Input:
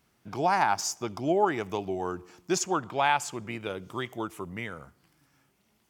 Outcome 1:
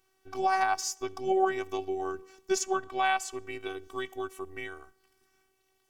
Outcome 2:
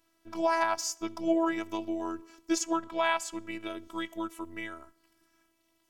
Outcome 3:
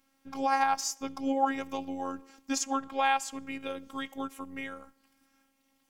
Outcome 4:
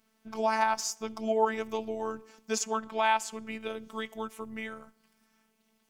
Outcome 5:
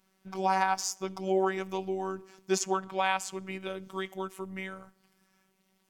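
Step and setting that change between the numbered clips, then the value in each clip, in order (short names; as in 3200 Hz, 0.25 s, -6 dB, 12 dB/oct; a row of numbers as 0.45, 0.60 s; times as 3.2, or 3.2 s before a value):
robotiser, frequency: 380, 330, 270, 220, 190 Hz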